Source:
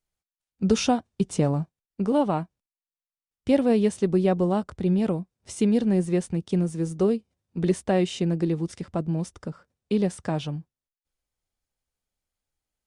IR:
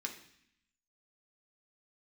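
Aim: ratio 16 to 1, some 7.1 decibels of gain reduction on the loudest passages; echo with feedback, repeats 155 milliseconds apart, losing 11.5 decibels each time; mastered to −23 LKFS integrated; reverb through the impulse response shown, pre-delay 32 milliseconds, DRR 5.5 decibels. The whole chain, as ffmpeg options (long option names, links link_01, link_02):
-filter_complex "[0:a]acompressor=threshold=-23dB:ratio=16,aecho=1:1:155|310|465:0.266|0.0718|0.0194,asplit=2[link_01][link_02];[1:a]atrim=start_sample=2205,adelay=32[link_03];[link_02][link_03]afir=irnorm=-1:irlink=0,volume=-5.5dB[link_04];[link_01][link_04]amix=inputs=2:normalize=0,volume=6dB"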